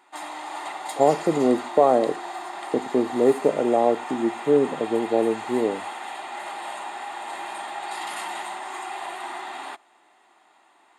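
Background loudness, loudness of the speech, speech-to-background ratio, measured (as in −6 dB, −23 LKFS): −33.5 LKFS, −22.5 LKFS, 11.0 dB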